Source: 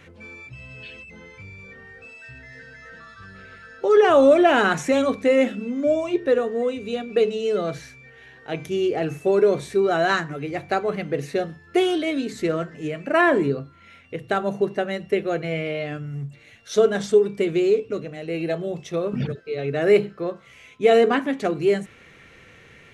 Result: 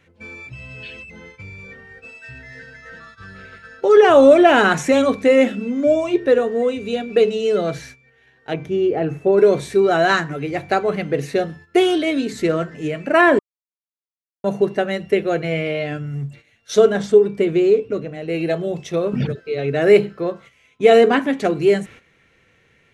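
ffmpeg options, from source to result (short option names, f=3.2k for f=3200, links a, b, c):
-filter_complex "[0:a]asplit=3[a][b][c];[a]afade=t=out:st=8.53:d=0.02[d];[b]lowpass=f=1.2k:p=1,afade=t=in:st=8.53:d=0.02,afade=t=out:st=9.37:d=0.02[e];[c]afade=t=in:st=9.37:d=0.02[f];[d][e][f]amix=inputs=3:normalize=0,asettb=1/sr,asplit=3[g][h][i];[g]atrim=end=16.924[j];[h]atrim=start=16.92:end=18.29,asetpts=PTS-STARTPTS,afade=t=in:d=0.004:c=qsin,afade=t=out:st=1.366:d=0.004:c=qsin,highshelf=f=2.7k:g=-7.5[k];[i]atrim=start=18.286[l];[j][k]acrossfade=d=0.004:c1=hsin:c2=qsin[m];[m][l]acrossfade=d=0.004:c1=qsin:c2=hsin,asplit=3[n][o][p];[n]atrim=end=13.39,asetpts=PTS-STARTPTS,afade=t=out:st=13.386:d=0.004:c=hsin[q];[o]atrim=start=13.39:end=14.44,asetpts=PTS-STARTPTS,volume=0[r];[p]atrim=start=14.44,asetpts=PTS-STARTPTS,afade=t=in:d=0.004:c=hsin[s];[q][r][s]concat=n=3:v=0:a=1,agate=range=-13dB:threshold=-44dB:ratio=16:detection=peak,bandreject=f=1.2k:w=22,volume=4.5dB"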